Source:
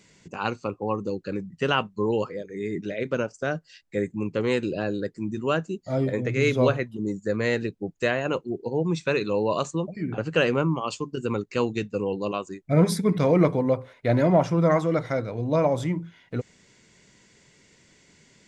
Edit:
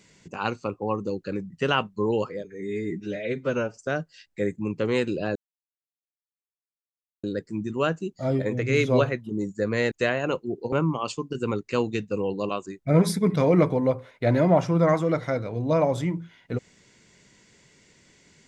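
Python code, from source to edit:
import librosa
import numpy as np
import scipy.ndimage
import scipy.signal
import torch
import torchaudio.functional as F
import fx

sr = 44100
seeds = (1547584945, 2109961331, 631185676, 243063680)

y = fx.edit(x, sr, fx.stretch_span(start_s=2.44, length_s=0.89, factor=1.5),
    fx.insert_silence(at_s=4.91, length_s=1.88),
    fx.cut(start_s=7.59, length_s=0.34),
    fx.cut(start_s=8.74, length_s=1.81), tone=tone)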